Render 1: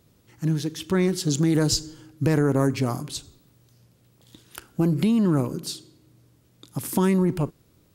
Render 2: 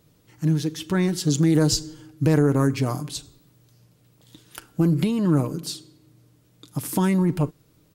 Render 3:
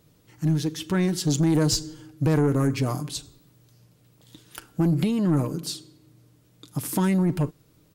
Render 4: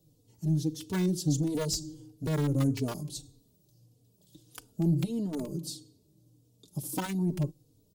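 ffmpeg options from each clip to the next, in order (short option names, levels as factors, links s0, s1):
-af "aecho=1:1:6.6:0.39"
-af "asoftclip=type=tanh:threshold=0.2"
-filter_complex "[0:a]acrossover=split=290|760|3500[s0][s1][s2][s3];[s2]acrusher=bits=4:mix=0:aa=0.000001[s4];[s0][s1][s4][s3]amix=inputs=4:normalize=0,asplit=2[s5][s6];[s6]adelay=3.3,afreqshift=-1.6[s7];[s5][s7]amix=inputs=2:normalize=1,volume=0.708"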